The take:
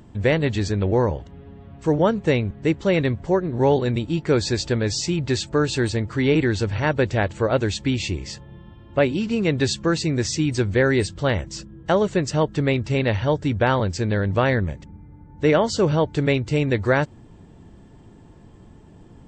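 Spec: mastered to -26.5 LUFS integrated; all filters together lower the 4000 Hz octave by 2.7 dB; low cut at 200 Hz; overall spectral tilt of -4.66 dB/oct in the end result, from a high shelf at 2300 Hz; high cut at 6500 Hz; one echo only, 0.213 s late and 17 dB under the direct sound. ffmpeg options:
-af "highpass=200,lowpass=6.5k,highshelf=f=2.3k:g=3.5,equalizer=f=4k:t=o:g=-6,aecho=1:1:213:0.141,volume=-3.5dB"

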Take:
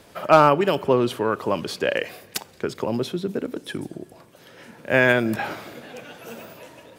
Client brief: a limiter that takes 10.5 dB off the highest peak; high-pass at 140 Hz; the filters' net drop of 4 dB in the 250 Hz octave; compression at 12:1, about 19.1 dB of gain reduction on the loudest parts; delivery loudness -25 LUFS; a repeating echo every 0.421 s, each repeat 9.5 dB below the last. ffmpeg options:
-af "highpass=140,equalizer=f=250:t=o:g=-5,acompressor=threshold=-28dB:ratio=12,alimiter=level_in=0.5dB:limit=-24dB:level=0:latency=1,volume=-0.5dB,aecho=1:1:421|842|1263|1684:0.335|0.111|0.0365|0.012,volume=12dB"

